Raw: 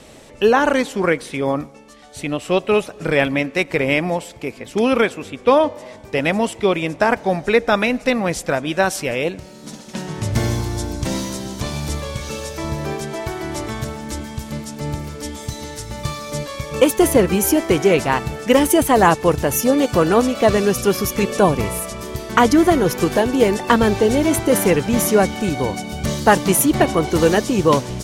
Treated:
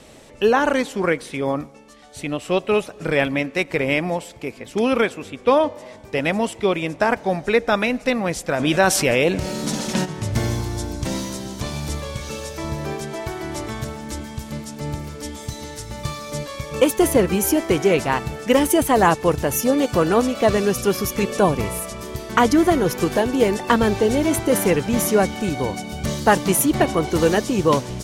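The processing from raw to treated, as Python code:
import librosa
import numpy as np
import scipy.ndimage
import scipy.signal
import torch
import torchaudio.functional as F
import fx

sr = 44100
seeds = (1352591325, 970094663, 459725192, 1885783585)

y = fx.env_flatten(x, sr, amount_pct=50, at=(8.58, 10.04), fade=0.02)
y = y * librosa.db_to_amplitude(-2.5)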